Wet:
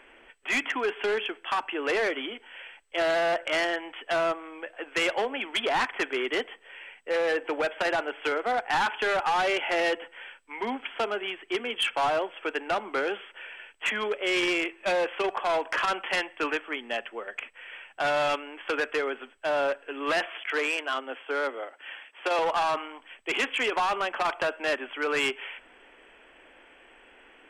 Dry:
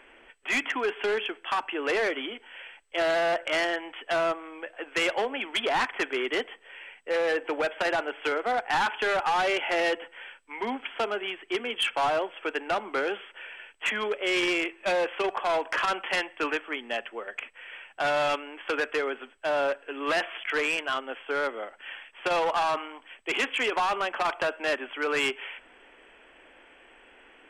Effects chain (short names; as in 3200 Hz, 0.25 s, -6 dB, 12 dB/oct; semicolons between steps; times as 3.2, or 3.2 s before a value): 20.26–22.39 elliptic high-pass 250 Hz